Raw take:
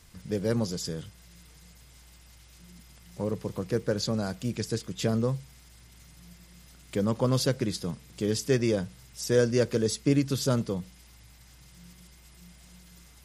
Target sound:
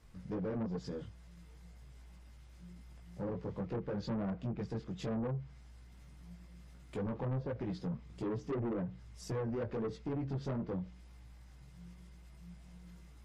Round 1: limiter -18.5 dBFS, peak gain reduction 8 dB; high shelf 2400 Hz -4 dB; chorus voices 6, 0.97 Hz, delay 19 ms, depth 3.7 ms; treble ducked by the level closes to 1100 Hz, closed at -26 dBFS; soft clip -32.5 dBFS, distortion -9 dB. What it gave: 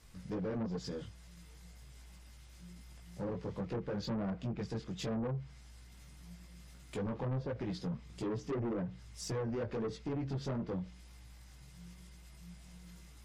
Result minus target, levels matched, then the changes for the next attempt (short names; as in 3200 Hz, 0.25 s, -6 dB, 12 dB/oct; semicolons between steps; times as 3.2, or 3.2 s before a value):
4000 Hz band +6.0 dB
change: high shelf 2400 Hz -14 dB